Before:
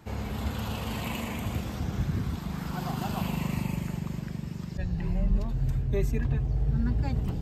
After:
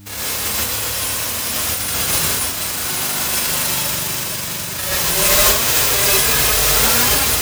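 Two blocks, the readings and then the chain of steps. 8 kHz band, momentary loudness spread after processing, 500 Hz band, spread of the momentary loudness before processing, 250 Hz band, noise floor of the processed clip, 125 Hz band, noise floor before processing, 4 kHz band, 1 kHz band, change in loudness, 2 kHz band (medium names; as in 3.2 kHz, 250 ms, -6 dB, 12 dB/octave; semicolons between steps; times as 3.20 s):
+34.0 dB, 8 LU, +13.5 dB, 6 LU, +1.0 dB, -25 dBFS, -1.0 dB, -38 dBFS, +26.5 dB, +15.5 dB, +16.0 dB, +22.0 dB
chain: formants flattened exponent 0.1; gated-style reverb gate 180 ms rising, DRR -7 dB; mains buzz 100 Hz, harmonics 3, -44 dBFS; trim +3 dB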